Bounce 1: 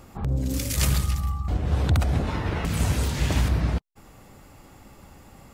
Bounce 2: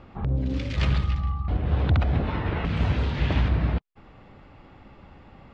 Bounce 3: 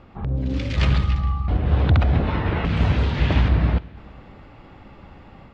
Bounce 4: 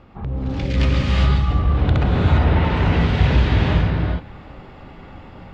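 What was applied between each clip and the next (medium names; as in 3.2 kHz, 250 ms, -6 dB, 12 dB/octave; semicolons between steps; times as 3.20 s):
low-pass 3.6 kHz 24 dB/octave
plate-style reverb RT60 2.6 s, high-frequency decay 0.9×, DRR 18.5 dB; level rider gain up to 4.5 dB
saturation -11.5 dBFS, distortion -19 dB; gated-style reverb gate 430 ms rising, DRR -3.5 dB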